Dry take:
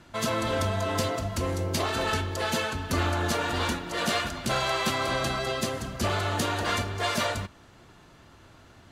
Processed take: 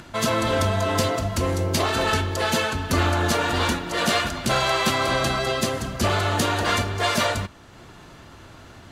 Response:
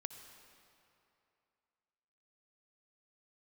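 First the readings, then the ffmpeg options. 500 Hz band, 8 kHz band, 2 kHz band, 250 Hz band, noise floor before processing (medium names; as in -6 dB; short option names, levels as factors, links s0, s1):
+5.5 dB, +5.5 dB, +5.5 dB, +5.5 dB, -54 dBFS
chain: -af "acompressor=mode=upward:threshold=0.00631:ratio=2.5,volume=1.88"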